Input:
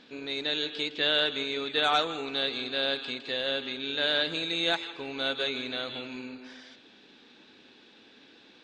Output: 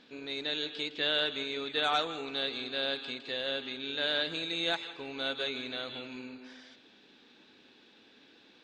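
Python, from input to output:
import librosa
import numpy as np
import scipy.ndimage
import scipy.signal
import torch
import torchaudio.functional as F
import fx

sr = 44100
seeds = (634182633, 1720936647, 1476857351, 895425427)

y = x + 10.0 ** (-22.5 / 20.0) * np.pad(x, (int(180 * sr / 1000.0), 0))[:len(x)]
y = y * librosa.db_to_amplitude(-4.0)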